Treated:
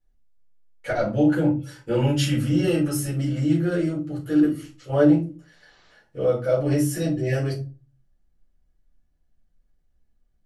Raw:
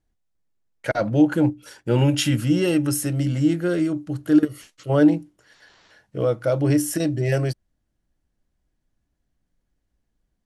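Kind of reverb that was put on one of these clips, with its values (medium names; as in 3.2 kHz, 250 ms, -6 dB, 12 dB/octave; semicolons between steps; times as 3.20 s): simulated room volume 140 m³, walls furnished, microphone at 4.1 m; trim -11.5 dB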